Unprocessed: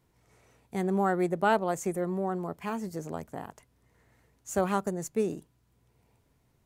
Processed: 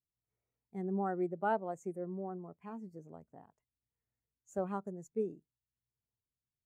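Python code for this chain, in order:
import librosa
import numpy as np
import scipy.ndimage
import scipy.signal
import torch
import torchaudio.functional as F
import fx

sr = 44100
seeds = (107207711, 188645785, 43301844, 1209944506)

y = fx.spectral_expand(x, sr, expansion=1.5)
y = F.gain(torch.from_numpy(y), -8.0).numpy()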